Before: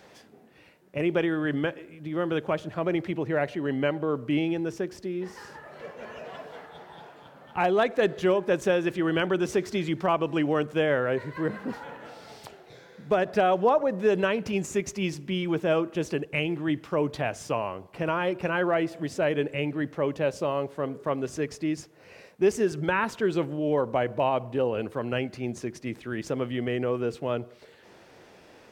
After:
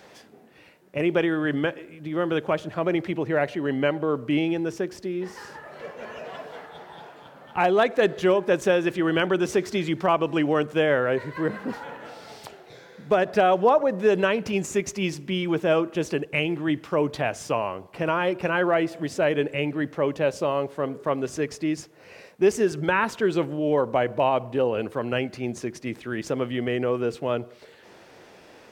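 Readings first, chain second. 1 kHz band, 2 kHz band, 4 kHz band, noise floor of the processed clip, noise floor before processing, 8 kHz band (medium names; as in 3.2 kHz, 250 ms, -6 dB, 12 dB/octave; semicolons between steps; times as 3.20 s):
+3.5 dB, +3.5 dB, +3.5 dB, -51 dBFS, -54 dBFS, +3.5 dB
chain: bass shelf 180 Hz -4 dB; trim +3.5 dB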